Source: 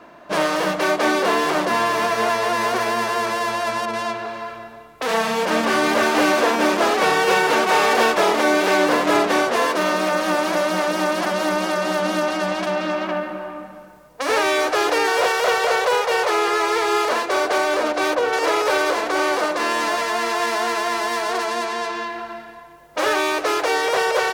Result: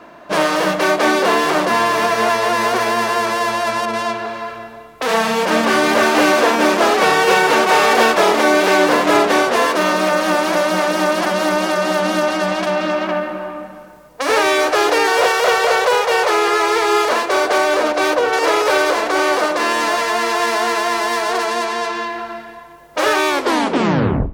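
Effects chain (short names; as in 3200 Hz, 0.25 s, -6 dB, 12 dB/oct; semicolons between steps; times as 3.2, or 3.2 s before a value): tape stop at the end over 1.05 s; Schroeder reverb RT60 0.56 s, combs from 28 ms, DRR 16.5 dB; gain +4 dB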